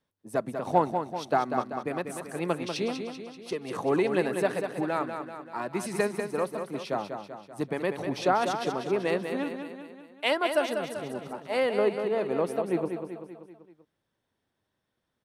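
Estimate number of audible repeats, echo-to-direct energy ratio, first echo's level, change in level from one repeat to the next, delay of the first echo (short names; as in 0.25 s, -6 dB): 5, -5.5 dB, -7.0 dB, -5.5 dB, 0.193 s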